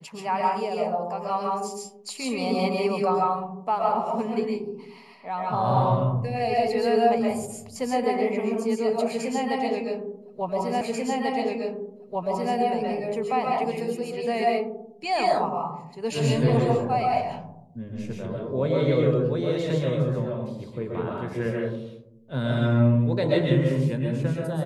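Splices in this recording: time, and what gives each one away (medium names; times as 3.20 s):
10.81 s: repeat of the last 1.74 s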